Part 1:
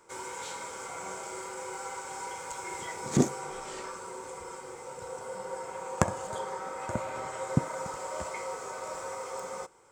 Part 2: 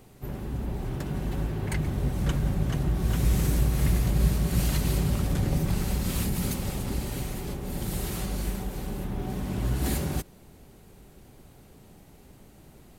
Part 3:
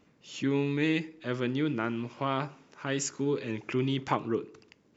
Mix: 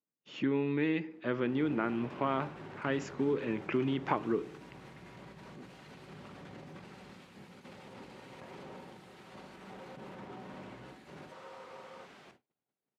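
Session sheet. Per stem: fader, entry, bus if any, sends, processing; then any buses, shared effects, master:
-15.0 dB, 2.40 s, bus A, no send, requantised 6-bit, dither triangular; soft clip -15.5 dBFS, distortion -16 dB
-19.0 dB, 1.10 s, bus A, no send, AGC gain up to 14.5 dB; tilt +2.5 dB/oct
+2.5 dB, 0.00 s, no bus, no send, compressor 2.5:1, threshold -30 dBFS, peak gain reduction 6 dB
bus A: 0.0 dB, negative-ratio compressor -42 dBFS, ratio -1; limiter -34.5 dBFS, peak gain reduction 7 dB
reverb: off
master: gate -50 dBFS, range -36 dB; BPF 160–2300 Hz

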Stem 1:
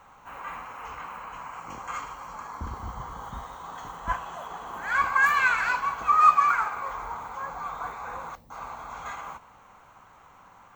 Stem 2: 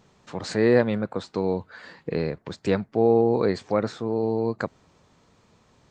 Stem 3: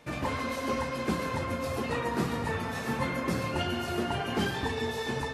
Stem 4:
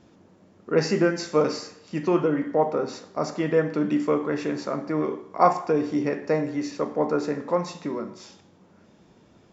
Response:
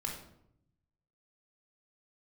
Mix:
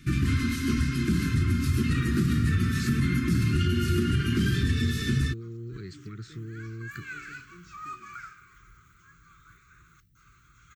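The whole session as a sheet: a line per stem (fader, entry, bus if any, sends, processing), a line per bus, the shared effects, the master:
-9.0 dB, 1.65 s, bus A, no send, dry
-2.5 dB, 2.35 s, bus A, no send, dry
+3.0 dB, 0.00 s, no bus, no send, tone controls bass +13 dB, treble +3 dB
-16.0 dB, 0.00 s, bus A, no send, dry
bus A: 0.0 dB, graphic EQ 125/250/1000/2000/4000 Hz +8/-11/-9/-3/-3 dB; compressor 4:1, threshold -32 dBFS, peak gain reduction 11.5 dB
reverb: off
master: elliptic band-stop 360–1300 Hz, stop band 40 dB; limiter -16 dBFS, peak gain reduction 7.5 dB

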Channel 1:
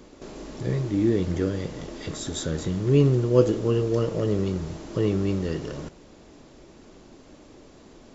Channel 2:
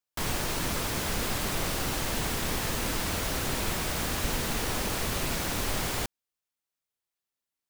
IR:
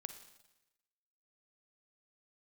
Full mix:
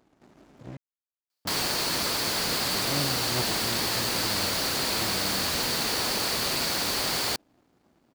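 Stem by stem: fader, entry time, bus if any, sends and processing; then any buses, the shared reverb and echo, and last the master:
-9.0 dB, 0.00 s, muted 0.77–1.45, no send, running maximum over 65 samples
+3.0 dB, 1.30 s, no send, bell 4500 Hz +11.5 dB 0.31 oct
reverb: off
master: HPF 290 Hz 6 dB/oct

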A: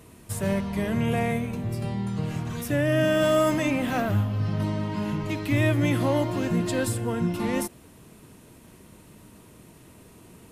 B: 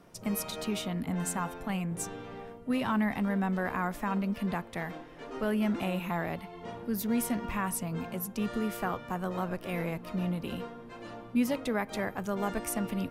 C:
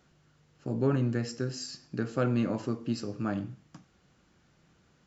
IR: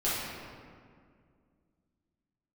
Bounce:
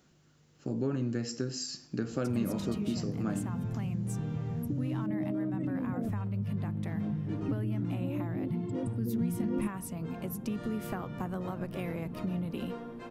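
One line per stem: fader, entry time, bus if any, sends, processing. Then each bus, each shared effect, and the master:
-11.5 dB, 2.00 s, bus A, no send, formant sharpening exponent 3; bell 140 Hz +15 dB 1.8 oct; compressor, threshold -21 dBFS, peak gain reduction 13 dB
-5.0 dB, 2.10 s, no bus, no send, compressor, threshold -35 dBFS, peak gain reduction 12 dB
-0.5 dB, 0.00 s, bus A, no send, dry
bus A: 0.0 dB, high shelf 4100 Hz +9.5 dB; compressor 2.5:1, threshold -33 dBFS, peak gain reduction 8.5 dB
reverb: off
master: bell 260 Hz +6 dB 1.9 oct; vocal rider within 4 dB 2 s

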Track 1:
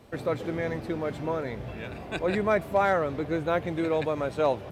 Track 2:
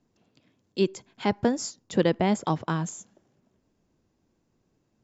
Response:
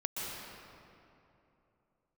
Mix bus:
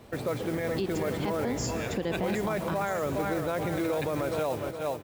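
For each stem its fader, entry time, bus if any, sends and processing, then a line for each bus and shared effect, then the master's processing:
+2.5 dB, 0.00 s, no send, echo send -9.5 dB, modulation noise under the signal 20 dB
-4.0 dB, 0.00 s, send -10.5 dB, no echo send, dry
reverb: on, RT60 2.9 s, pre-delay 0.115 s
echo: feedback echo 0.416 s, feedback 43%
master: limiter -21 dBFS, peak gain reduction 12.5 dB

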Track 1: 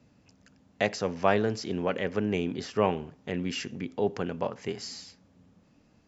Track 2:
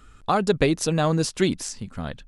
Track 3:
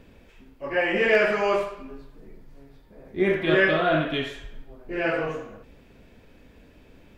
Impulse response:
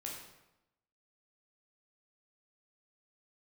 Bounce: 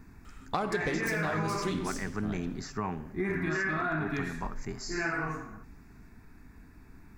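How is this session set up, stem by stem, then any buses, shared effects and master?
-0.5 dB, 0.00 s, bus A, send -22 dB, high shelf 5200 Hz +6 dB
+1.0 dB, 0.25 s, no bus, send -11.5 dB, self-modulated delay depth 0.061 ms; auto duck -15 dB, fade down 1.15 s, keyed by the first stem
+1.5 dB, 0.00 s, bus A, no send, dry
bus A: 0.0 dB, fixed phaser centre 1300 Hz, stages 4; limiter -19 dBFS, peak gain reduction 9 dB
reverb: on, RT60 0.90 s, pre-delay 11 ms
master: compressor 6:1, threshold -27 dBFS, peak gain reduction 8.5 dB

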